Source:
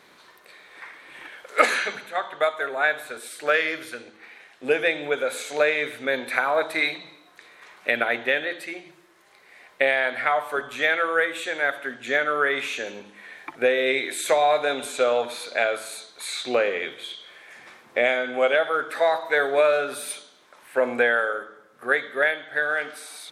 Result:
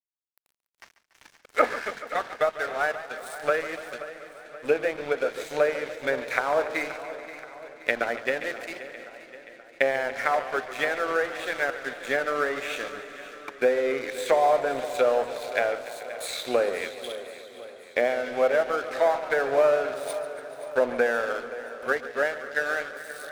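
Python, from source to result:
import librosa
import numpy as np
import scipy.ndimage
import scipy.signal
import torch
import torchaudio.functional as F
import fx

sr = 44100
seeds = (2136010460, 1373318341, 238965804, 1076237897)

p1 = fx.env_lowpass_down(x, sr, base_hz=1200.0, full_db=-19.0)
p2 = fx.high_shelf(p1, sr, hz=8800.0, db=11.0)
p3 = np.sign(p2) * np.maximum(np.abs(p2) - 10.0 ** (-37.0 / 20.0), 0.0)
p4 = p3 + fx.echo_feedback(p3, sr, ms=527, feedback_pct=56, wet_db=-15.0, dry=0)
y = fx.echo_warbled(p4, sr, ms=144, feedback_pct=78, rate_hz=2.8, cents=107, wet_db=-15.0)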